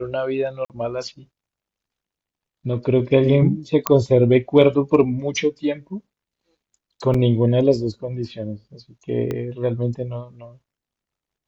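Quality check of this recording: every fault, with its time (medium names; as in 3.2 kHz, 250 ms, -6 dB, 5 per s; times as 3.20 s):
0.65–0.70 s: dropout 48 ms
3.87 s: pop -2 dBFS
7.14 s: dropout 4.2 ms
9.31 s: pop -14 dBFS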